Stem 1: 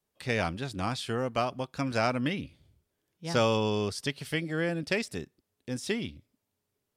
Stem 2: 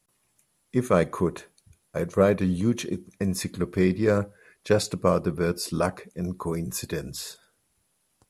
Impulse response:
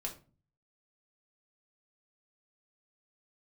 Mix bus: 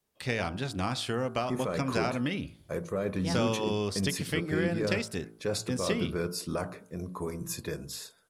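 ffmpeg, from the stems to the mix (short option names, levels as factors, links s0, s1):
-filter_complex "[0:a]acompressor=threshold=0.0355:ratio=6,volume=1.41[s0];[1:a]bandreject=f=60:t=h:w=6,bandreject=f=120:t=h:w=6,bandreject=f=180:t=h:w=6,alimiter=limit=0.15:level=0:latency=1:release=21,adelay=750,volume=0.596[s1];[s0][s1]amix=inputs=2:normalize=0,bandreject=f=55.01:t=h:w=4,bandreject=f=110.02:t=h:w=4,bandreject=f=165.03:t=h:w=4,bandreject=f=220.04:t=h:w=4,bandreject=f=275.05:t=h:w=4,bandreject=f=330.06:t=h:w=4,bandreject=f=385.07:t=h:w=4,bandreject=f=440.08:t=h:w=4,bandreject=f=495.09:t=h:w=4,bandreject=f=550.1:t=h:w=4,bandreject=f=605.11:t=h:w=4,bandreject=f=660.12:t=h:w=4,bandreject=f=715.13:t=h:w=4,bandreject=f=770.14:t=h:w=4,bandreject=f=825.15:t=h:w=4,bandreject=f=880.16:t=h:w=4,bandreject=f=935.17:t=h:w=4,bandreject=f=990.18:t=h:w=4,bandreject=f=1045.19:t=h:w=4,bandreject=f=1100.2:t=h:w=4,bandreject=f=1155.21:t=h:w=4,bandreject=f=1210.22:t=h:w=4,bandreject=f=1265.23:t=h:w=4,bandreject=f=1320.24:t=h:w=4,bandreject=f=1375.25:t=h:w=4,bandreject=f=1430.26:t=h:w=4,bandreject=f=1485.27:t=h:w=4,bandreject=f=1540.28:t=h:w=4,bandreject=f=1595.29:t=h:w=4"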